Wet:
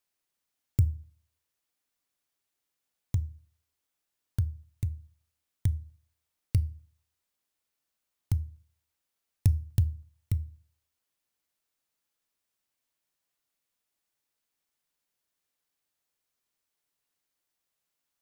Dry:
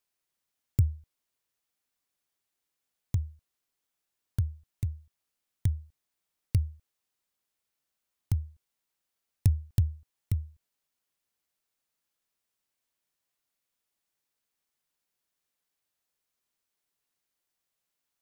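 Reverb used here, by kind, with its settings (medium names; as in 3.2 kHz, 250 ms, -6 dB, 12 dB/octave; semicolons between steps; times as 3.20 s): FDN reverb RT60 0.38 s, low-frequency decay 1.4×, high-frequency decay 0.95×, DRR 17 dB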